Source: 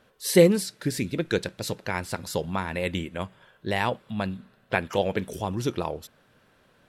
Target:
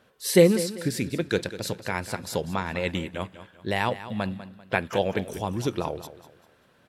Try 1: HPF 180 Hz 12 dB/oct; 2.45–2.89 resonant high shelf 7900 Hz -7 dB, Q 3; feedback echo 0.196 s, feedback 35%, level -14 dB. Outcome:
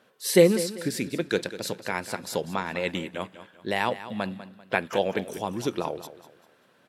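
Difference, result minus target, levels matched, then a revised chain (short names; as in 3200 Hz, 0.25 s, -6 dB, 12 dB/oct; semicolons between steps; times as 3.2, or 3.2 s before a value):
125 Hz band -4.0 dB
HPF 51 Hz 12 dB/oct; 2.45–2.89 resonant high shelf 7900 Hz -7 dB, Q 3; feedback echo 0.196 s, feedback 35%, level -14 dB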